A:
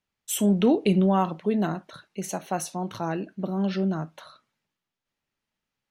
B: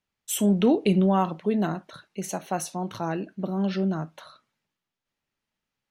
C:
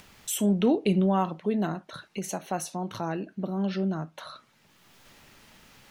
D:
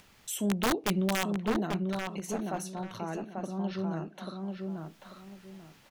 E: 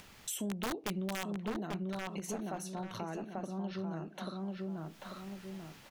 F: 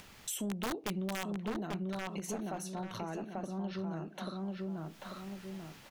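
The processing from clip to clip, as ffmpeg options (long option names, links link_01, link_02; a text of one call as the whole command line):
ffmpeg -i in.wav -af anull out.wav
ffmpeg -i in.wav -af "acompressor=mode=upward:threshold=-26dB:ratio=2.5,volume=-2.5dB" out.wav
ffmpeg -i in.wav -filter_complex "[0:a]aeval=exprs='(mod(5.62*val(0)+1,2)-1)/5.62':channel_layout=same,asplit=2[link_01][link_02];[link_02]adelay=840,lowpass=frequency=2300:poles=1,volume=-3.5dB,asplit=2[link_03][link_04];[link_04]adelay=840,lowpass=frequency=2300:poles=1,volume=0.26,asplit=2[link_05][link_06];[link_06]adelay=840,lowpass=frequency=2300:poles=1,volume=0.26,asplit=2[link_07][link_08];[link_08]adelay=840,lowpass=frequency=2300:poles=1,volume=0.26[link_09];[link_01][link_03][link_05][link_07][link_09]amix=inputs=5:normalize=0,volume=-5.5dB" out.wav
ffmpeg -i in.wav -af "acompressor=threshold=-42dB:ratio=3,volume=3.5dB" out.wav
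ffmpeg -i in.wav -af "asoftclip=type=tanh:threshold=-26dB,volume=1dB" out.wav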